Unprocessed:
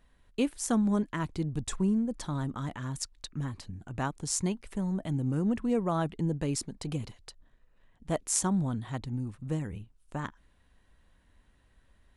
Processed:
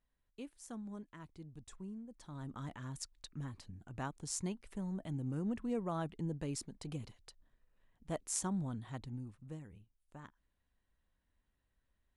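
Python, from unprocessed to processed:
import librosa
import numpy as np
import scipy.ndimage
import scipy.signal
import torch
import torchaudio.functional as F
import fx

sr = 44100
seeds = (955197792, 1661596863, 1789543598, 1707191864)

y = fx.gain(x, sr, db=fx.line((2.15, -19.5), (2.57, -9.0), (9.08, -9.0), (9.69, -17.0)))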